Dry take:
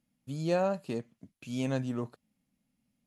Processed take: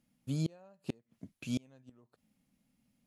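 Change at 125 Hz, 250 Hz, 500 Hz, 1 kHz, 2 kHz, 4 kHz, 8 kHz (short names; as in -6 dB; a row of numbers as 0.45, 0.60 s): -3.0, -5.0, -18.0, -24.5, -10.5, -3.5, -2.0 dB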